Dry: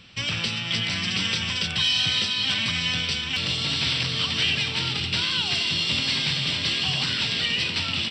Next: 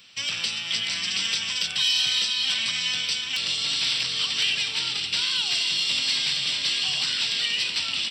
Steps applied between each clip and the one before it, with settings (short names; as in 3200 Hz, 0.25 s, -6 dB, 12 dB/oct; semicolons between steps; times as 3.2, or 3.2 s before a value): RIAA curve recording; gain -5.5 dB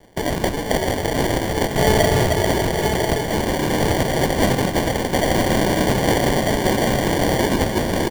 sample-and-hold 34×; crossover distortion -53.5 dBFS; echo 0.999 s -11 dB; gain +7 dB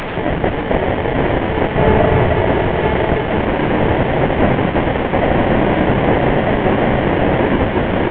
delta modulation 16 kbps, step -21 dBFS; gain +4.5 dB